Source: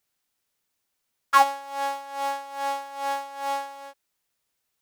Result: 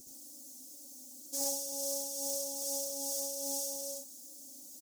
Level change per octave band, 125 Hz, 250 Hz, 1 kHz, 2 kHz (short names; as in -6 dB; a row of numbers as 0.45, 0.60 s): n/a, -1.0 dB, -28.0 dB, under -35 dB